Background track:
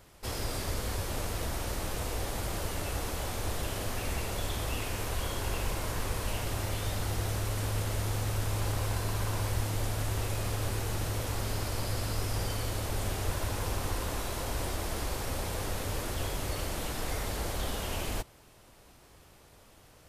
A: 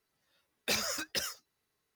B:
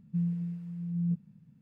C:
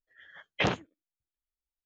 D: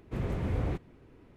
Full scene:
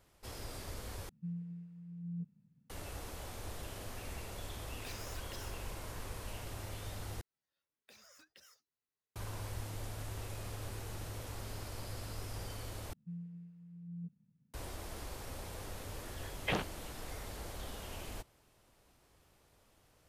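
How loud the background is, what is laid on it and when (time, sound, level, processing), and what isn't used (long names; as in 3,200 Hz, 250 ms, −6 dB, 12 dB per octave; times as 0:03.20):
background track −11 dB
0:01.09: overwrite with B −11.5 dB
0:04.17: mix in A −9.5 dB + downward compressor 2.5 to 1, threshold −41 dBFS
0:07.21: overwrite with A −17.5 dB + downward compressor 16 to 1, threshold −39 dBFS
0:12.93: overwrite with B −15 dB
0:15.88: mix in C −7 dB
not used: D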